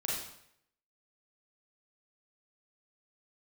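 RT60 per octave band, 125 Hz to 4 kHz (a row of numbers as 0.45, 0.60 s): 0.75, 0.70, 0.70, 0.70, 0.70, 0.65 s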